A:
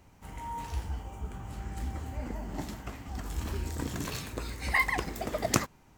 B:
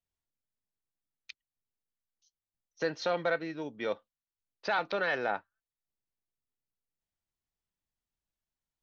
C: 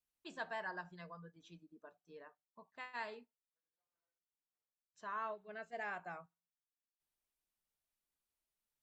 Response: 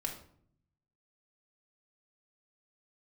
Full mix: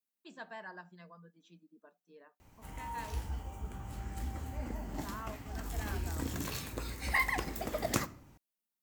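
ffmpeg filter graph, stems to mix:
-filter_complex "[0:a]adelay=2400,volume=0.562,asplit=2[s0][s1];[s1]volume=0.299[s2];[2:a]lowshelf=f=140:t=q:w=3:g=-12.5,volume=0.668[s3];[3:a]atrim=start_sample=2205[s4];[s2][s4]afir=irnorm=-1:irlink=0[s5];[s0][s3][s5]amix=inputs=3:normalize=0,aemphasis=mode=production:type=50fm,asoftclip=type=tanh:threshold=0.178,highshelf=f=5900:g=-11"

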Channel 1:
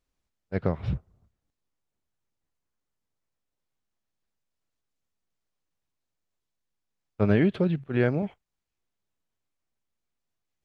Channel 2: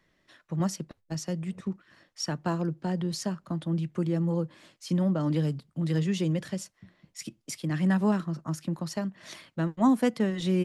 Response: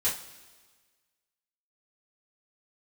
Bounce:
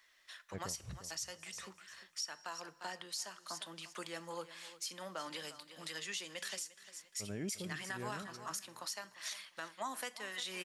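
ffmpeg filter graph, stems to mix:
-filter_complex "[0:a]volume=0.188,asplit=2[s0][s1];[s1]volume=0.15[s2];[1:a]highpass=1100,highshelf=f=3700:g=7,volume=1.26,asplit=3[s3][s4][s5];[s4]volume=0.0841[s6];[s5]volume=0.168[s7];[2:a]atrim=start_sample=2205[s8];[s6][s8]afir=irnorm=-1:irlink=0[s9];[s2][s7]amix=inputs=2:normalize=0,aecho=0:1:350|700|1050|1400:1|0.25|0.0625|0.0156[s10];[s0][s3][s9][s10]amix=inputs=4:normalize=0,alimiter=level_in=2:limit=0.0631:level=0:latency=1:release=371,volume=0.501"

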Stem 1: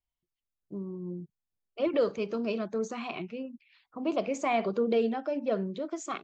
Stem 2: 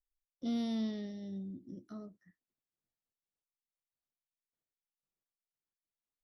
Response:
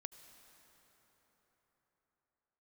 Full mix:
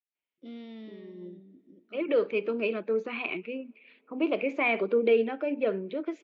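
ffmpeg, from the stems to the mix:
-filter_complex "[0:a]adelay=150,volume=1.26,asplit=2[s0][s1];[s1]volume=0.112[s2];[1:a]volume=0.473,asplit=3[s3][s4][s5];[s4]volume=0.473[s6];[s5]apad=whole_len=281476[s7];[s0][s7]sidechaincompress=threshold=0.00224:ratio=8:attack=16:release=427[s8];[2:a]atrim=start_sample=2205[s9];[s2][s6]amix=inputs=2:normalize=0[s10];[s10][s9]afir=irnorm=-1:irlink=0[s11];[s8][s3][s11]amix=inputs=3:normalize=0,highpass=290,equalizer=f=300:t=q:w=4:g=4,equalizer=f=440:t=q:w=4:g=3,equalizer=f=720:t=q:w=4:g=-7,equalizer=f=1100:t=q:w=4:g=-5,equalizer=f=2400:t=q:w=4:g=8,lowpass=f=3300:w=0.5412,lowpass=f=3300:w=1.3066"

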